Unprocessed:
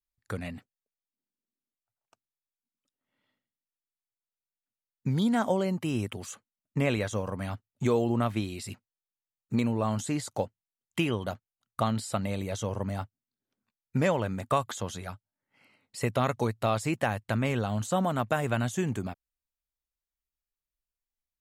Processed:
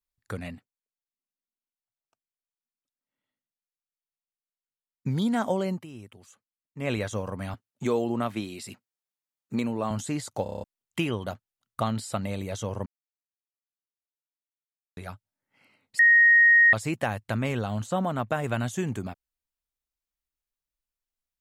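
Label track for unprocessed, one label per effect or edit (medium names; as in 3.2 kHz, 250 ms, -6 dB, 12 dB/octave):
0.550000	5.070000	upward expansion, over -53 dBFS
5.730000	6.910000	dip -13.5 dB, fades 0.13 s
7.540000	9.910000	high-pass 160 Hz
10.430000	10.430000	stutter in place 0.03 s, 7 plays
12.860000	14.970000	mute
15.990000	16.730000	bleep 1.87 kHz -13.5 dBFS
17.820000	18.440000	treble shelf 4.3 kHz -6.5 dB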